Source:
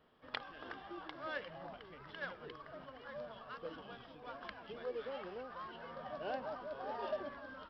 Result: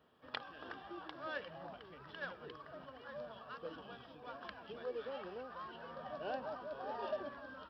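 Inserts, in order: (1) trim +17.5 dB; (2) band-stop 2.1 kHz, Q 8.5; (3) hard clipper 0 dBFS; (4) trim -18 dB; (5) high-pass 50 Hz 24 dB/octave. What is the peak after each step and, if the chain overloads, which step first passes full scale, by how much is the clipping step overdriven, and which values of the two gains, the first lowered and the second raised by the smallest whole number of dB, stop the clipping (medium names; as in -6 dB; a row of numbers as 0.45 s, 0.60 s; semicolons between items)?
-5.0 dBFS, -5.5 dBFS, -5.5 dBFS, -23.5 dBFS, -23.5 dBFS; nothing clips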